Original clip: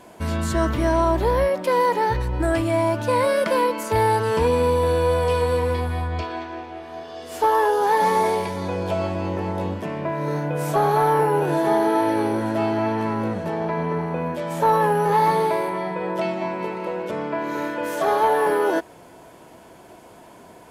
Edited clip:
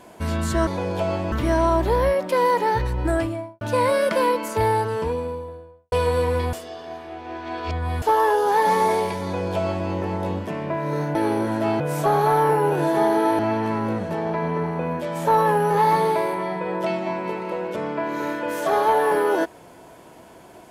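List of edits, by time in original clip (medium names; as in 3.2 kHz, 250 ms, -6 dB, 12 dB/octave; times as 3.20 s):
2.42–2.96 s: studio fade out
3.69–5.27 s: studio fade out
5.88–7.37 s: reverse
8.58–9.23 s: copy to 0.67 s
12.09–12.74 s: move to 10.50 s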